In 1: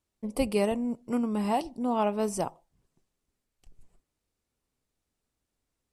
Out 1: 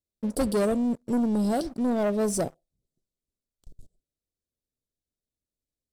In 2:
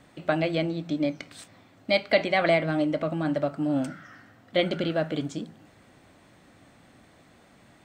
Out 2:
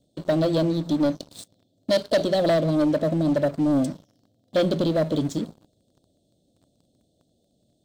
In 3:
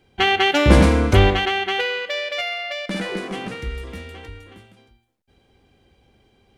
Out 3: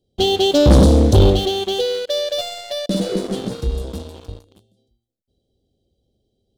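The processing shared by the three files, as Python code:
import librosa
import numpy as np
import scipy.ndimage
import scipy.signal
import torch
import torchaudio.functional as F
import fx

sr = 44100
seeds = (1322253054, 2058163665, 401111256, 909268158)

y = scipy.signal.sosfilt(scipy.signal.ellip(3, 1.0, 40, [630.0, 3600.0], 'bandstop', fs=sr, output='sos'), x)
y = fx.leveller(y, sr, passes=3)
y = F.gain(torch.from_numpy(y), -3.5).numpy()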